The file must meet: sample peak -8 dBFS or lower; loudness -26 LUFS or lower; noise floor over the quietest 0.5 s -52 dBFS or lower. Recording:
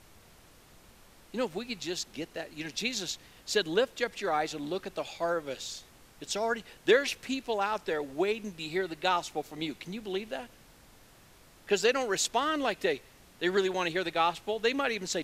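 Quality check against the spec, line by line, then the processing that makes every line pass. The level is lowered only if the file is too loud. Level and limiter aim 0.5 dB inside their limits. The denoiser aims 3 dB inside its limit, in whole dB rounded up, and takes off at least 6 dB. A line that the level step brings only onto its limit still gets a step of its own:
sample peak -10.5 dBFS: pass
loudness -31.5 LUFS: pass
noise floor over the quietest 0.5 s -57 dBFS: pass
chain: none needed

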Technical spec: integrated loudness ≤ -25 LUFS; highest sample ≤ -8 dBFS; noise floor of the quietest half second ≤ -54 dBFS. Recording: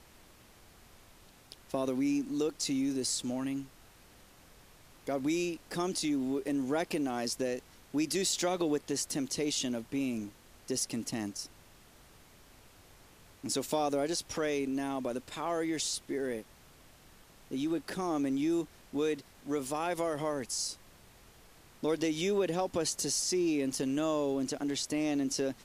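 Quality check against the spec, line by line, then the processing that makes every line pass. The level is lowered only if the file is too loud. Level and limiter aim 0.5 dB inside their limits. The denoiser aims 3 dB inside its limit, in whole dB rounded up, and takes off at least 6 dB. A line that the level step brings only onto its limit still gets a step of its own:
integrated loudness -33.0 LUFS: pass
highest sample -18.0 dBFS: pass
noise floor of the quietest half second -58 dBFS: pass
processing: none needed

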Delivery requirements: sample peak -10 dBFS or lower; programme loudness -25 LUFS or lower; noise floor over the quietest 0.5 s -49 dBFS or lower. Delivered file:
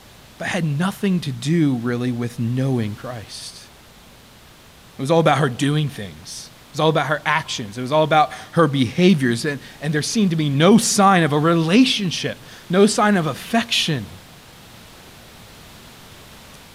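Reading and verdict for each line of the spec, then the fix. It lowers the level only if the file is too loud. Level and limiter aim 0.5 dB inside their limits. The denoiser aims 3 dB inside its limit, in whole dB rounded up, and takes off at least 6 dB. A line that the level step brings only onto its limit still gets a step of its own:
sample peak -3.5 dBFS: fail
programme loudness -18.5 LUFS: fail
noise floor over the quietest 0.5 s -46 dBFS: fail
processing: trim -7 dB

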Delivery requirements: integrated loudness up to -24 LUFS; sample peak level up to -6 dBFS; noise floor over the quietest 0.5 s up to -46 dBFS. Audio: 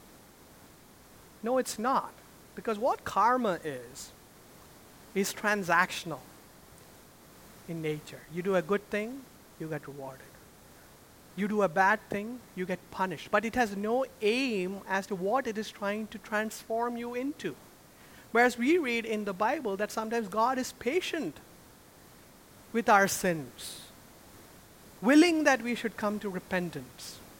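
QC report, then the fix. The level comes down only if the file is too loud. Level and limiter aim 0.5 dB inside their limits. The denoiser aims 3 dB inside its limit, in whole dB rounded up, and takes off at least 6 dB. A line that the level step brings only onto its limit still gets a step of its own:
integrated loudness -30.0 LUFS: pass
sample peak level -9.5 dBFS: pass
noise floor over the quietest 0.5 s -55 dBFS: pass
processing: none needed

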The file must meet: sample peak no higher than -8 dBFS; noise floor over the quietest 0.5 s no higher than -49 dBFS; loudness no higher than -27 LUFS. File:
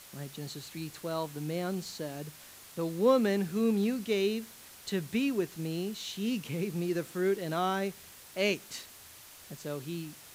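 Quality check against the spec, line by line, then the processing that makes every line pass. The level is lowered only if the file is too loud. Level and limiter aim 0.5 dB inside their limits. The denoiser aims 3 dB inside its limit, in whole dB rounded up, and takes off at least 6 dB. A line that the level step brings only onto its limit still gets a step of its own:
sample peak -14.0 dBFS: pass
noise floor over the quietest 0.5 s -52 dBFS: pass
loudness -32.5 LUFS: pass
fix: none needed

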